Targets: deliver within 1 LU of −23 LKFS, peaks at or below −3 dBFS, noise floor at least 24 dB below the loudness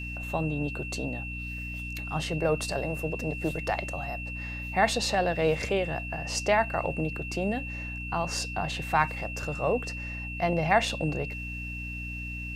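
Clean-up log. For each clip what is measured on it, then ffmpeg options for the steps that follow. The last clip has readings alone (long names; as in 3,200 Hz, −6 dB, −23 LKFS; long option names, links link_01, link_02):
mains hum 60 Hz; hum harmonics up to 300 Hz; level of the hum −36 dBFS; interfering tone 2,700 Hz; level of the tone −37 dBFS; integrated loudness −29.5 LKFS; sample peak −10.0 dBFS; target loudness −23.0 LKFS
→ -af "bandreject=frequency=60:width_type=h:width=6,bandreject=frequency=120:width_type=h:width=6,bandreject=frequency=180:width_type=h:width=6,bandreject=frequency=240:width_type=h:width=6,bandreject=frequency=300:width_type=h:width=6"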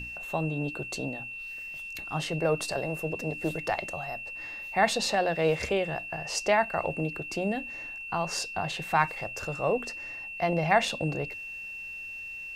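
mains hum none found; interfering tone 2,700 Hz; level of the tone −37 dBFS
→ -af "bandreject=frequency=2700:width=30"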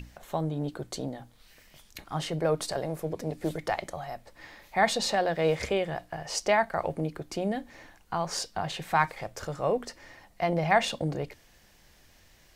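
interfering tone none found; integrated loudness −30.0 LKFS; sample peak −10.5 dBFS; target loudness −23.0 LKFS
→ -af "volume=7dB"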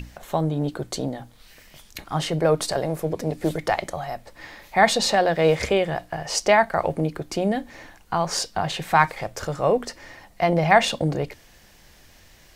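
integrated loudness −23.0 LKFS; sample peak −3.5 dBFS; background noise floor −52 dBFS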